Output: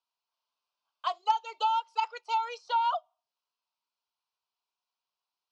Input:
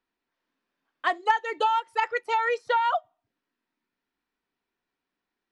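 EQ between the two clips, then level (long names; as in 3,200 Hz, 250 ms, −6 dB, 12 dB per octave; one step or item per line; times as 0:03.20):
loudspeaker in its box 460–5,500 Hz, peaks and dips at 510 Hz −8 dB, 760 Hz −5 dB, 1,400 Hz −4 dB, 2,200 Hz −6 dB, 3,600 Hz −5 dB
tilt shelving filter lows −6.5 dB, about 800 Hz
phaser with its sweep stopped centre 750 Hz, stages 4
0.0 dB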